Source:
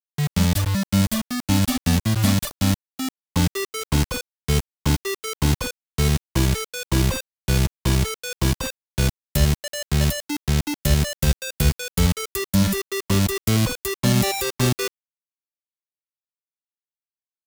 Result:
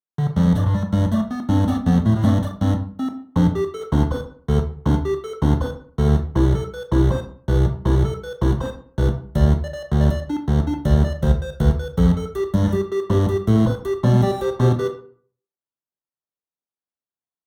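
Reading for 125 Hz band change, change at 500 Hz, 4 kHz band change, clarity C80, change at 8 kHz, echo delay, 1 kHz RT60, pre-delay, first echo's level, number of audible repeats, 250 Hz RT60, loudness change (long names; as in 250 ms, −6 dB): +3.0 dB, +5.5 dB, −11.5 dB, 14.5 dB, below −15 dB, no echo audible, 0.50 s, 17 ms, no echo audible, no echo audible, 0.60 s, +2.0 dB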